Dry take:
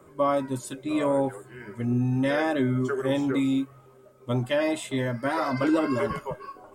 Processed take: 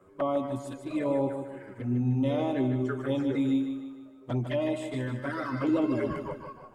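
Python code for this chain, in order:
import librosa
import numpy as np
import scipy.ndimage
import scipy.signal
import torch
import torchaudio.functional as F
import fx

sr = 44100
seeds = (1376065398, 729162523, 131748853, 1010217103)

y = fx.high_shelf(x, sr, hz=3900.0, db=-8.5)
y = fx.env_flanger(y, sr, rest_ms=11.7, full_db=-21.0)
y = fx.echo_feedback(y, sr, ms=152, feedback_pct=46, wet_db=-8.0)
y = y * librosa.db_to_amplitude(-2.5)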